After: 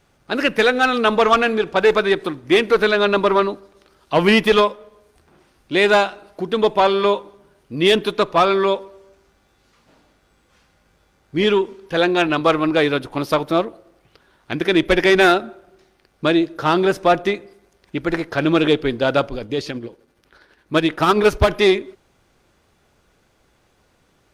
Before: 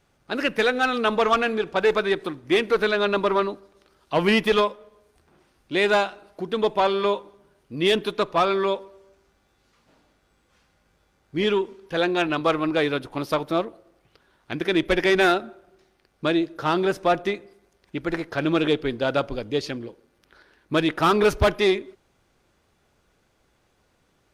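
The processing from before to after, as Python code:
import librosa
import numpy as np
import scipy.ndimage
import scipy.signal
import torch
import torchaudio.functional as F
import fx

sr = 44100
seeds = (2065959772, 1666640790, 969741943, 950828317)

y = fx.tremolo(x, sr, hz=12.0, depth=0.49, at=(19.27, 21.53))
y = y * librosa.db_to_amplitude(5.5)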